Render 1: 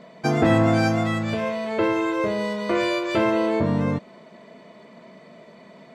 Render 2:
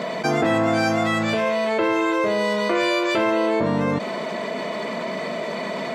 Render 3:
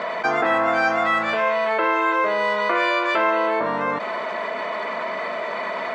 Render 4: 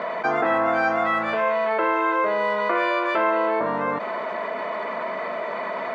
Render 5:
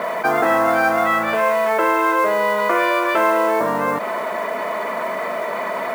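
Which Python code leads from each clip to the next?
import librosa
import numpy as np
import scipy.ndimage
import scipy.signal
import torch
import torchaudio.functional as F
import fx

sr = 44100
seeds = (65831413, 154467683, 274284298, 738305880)

y1 = fx.highpass(x, sr, hz=360.0, slope=6)
y1 = fx.env_flatten(y1, sr, amount_pct=70)
y2 = fx.bandpass_q(y1, sr, hz=1300.0, q=1.2)
y2 = y2 * 10.0 ** (6.5 / 20.0)
y3 = fx.high_shelf(y2, sr, hz=2700.0, db=-11.0)
y4 = fx.mod_noise(y3, sr, seeds[0], snr_db=24)
y4 = y4 * 10.0 ** (4.5 / 20.0)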